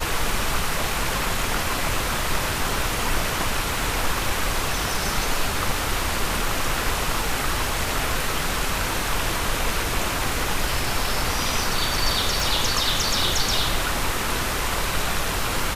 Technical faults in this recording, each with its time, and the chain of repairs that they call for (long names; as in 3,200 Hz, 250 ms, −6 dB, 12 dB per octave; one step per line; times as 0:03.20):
surface crackle 32 per second −31 dBFS
0:12.40: click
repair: click removal